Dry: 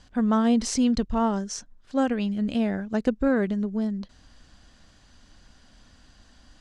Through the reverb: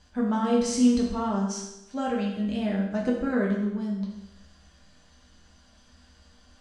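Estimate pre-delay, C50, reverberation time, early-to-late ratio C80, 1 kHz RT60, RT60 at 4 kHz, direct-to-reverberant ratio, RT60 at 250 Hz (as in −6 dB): 5 ms, 3.5 dB, 0.90 s, 6.0 dB, 0.85 s, 0.85 s, −3.0 dB, 0.85 s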